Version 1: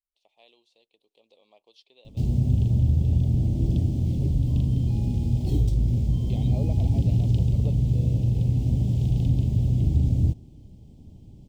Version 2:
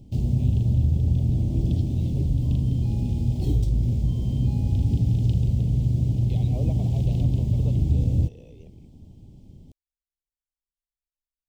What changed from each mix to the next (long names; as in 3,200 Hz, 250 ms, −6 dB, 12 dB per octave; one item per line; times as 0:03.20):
background: entry −2.05 s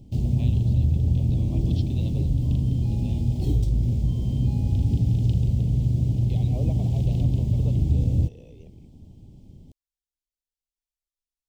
first voice +9.5 dB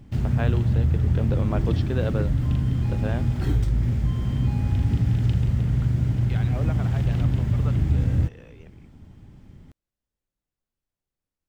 first voice: remove high-pass filter 1,400 Hz 12 dB per octave
master: remove Butterworth band-reject 1,500 Hz, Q 0.57